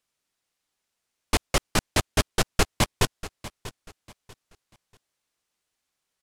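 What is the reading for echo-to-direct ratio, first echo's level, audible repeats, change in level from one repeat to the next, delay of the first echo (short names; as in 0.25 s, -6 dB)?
-15.5 dB, -16.0 dB, 2, -10.5 dB, 0.64 s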